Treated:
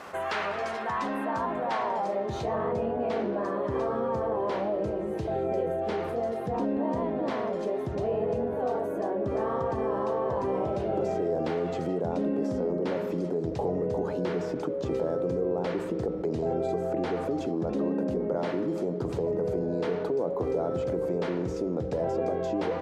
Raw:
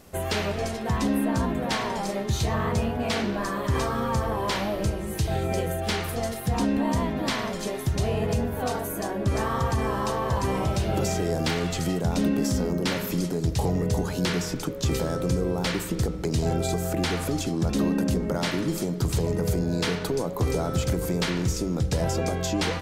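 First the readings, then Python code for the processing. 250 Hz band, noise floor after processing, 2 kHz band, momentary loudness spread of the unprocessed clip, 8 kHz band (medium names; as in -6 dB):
-4.5 dB, -33 dBFS, -7.5 dB, 3 LU, under -20 dB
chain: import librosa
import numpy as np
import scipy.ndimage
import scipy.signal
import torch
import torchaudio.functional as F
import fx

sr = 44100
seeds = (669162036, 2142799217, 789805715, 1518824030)

y = fx.filter_sweep_bandpass(x, sr, from_hz=1200.0, to_hz=490.0, start_s=0.9, end_s=2.83, q=1.4)
y = fx.env_flatten(y, sr, amount_pct=50)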